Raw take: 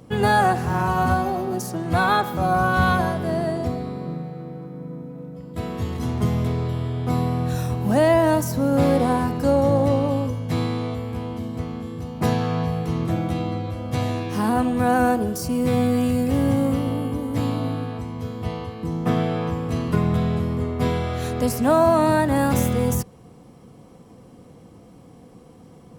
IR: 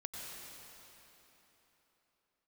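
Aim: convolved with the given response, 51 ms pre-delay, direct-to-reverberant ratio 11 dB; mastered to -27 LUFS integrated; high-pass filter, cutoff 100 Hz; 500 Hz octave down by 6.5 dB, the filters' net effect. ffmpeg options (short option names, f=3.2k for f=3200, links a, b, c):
-filter_complex "[0:a]highpass=100,equalizer=f=500:t=o:g=-8.5,asplit=2[a][b];[1:a]atrim=start_sample=2205,adelay=51[c];[b][c]afir=irnorm=-1:irlink=0,volume=-10.5dB[d];[a][d]amix=inputs=2:normalize=0,volume=-2dB"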